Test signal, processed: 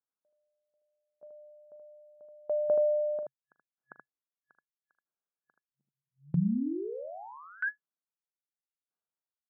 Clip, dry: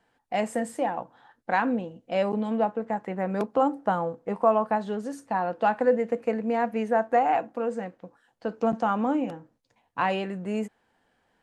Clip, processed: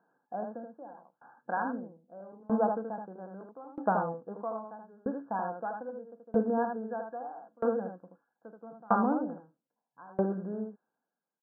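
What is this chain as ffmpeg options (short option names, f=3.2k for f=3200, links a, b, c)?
-af "aecho=1:1:41|78:0.2|0.708,afftfilt=real='re*between(b*sr/4096,130,1700)':imag='im*between(b*sr/4096,130,1700)':win_size=4096:overlap=0.75,aeval=exprs='val(0)*pow(10,-29*if(lt(mod(0.78*n/s,1),2*abs(0.78)/1000),1-mod(0.78*n/s,1)/(2*abs(0.78)/1000),(mod(0.78*n/s,1)-2*abs(0.78)/1000)/(1-2*abs(0.78)/1000))/20)':c=same"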